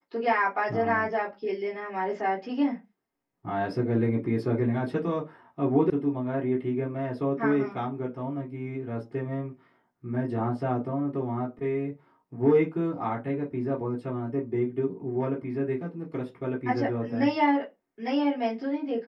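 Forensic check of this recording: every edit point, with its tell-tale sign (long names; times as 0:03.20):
0:05.90: cut off before it has died away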